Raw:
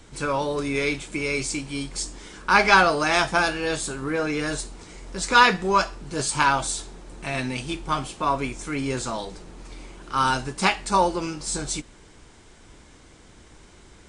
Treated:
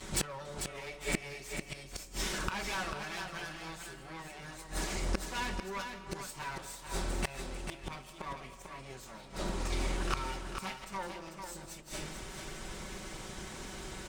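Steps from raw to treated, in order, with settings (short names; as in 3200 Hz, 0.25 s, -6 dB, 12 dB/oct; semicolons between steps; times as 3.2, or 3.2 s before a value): minimum comb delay 5.3 ms; notches 60/120/180/240/300/360/420/480/540 Hz; digital reverb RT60 0.9 s, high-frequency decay 0.7×, pre-delay 0.115 s, DRR 12.5 dB; added harmonics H 3 -17 dB, 5 -13 dB, 6 -22 dB, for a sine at -3.5 dBFS; flipped gate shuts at -21 dBFS, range -25 dB; echo 0.445 s -7 dB; gain +3 dB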